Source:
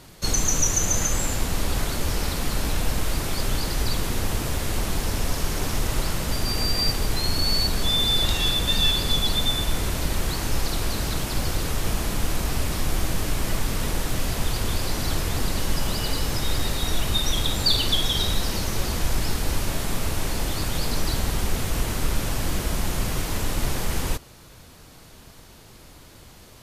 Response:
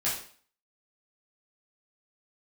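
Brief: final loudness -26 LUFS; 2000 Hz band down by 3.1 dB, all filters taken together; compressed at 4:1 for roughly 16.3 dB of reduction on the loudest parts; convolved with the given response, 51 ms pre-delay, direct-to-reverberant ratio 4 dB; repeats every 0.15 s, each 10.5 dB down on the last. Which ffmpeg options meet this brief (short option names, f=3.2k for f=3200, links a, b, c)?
-filter_complex "[0:a]equalizer=f=2k:t=o:g=-4,acompressor=threshold=-38dB:ratio=4,aecho=1:1:150|300|450:0.299|0.0896|0.0269,asplit=2[a][b];[1:a]atrim=start_sample=2205,adelay=51[c];[b][c]afir=irnorm=-1:irlink=0,volume=-12dB[d];[a][d]amix=inputs=2:normalize=0,volume=13.5dB"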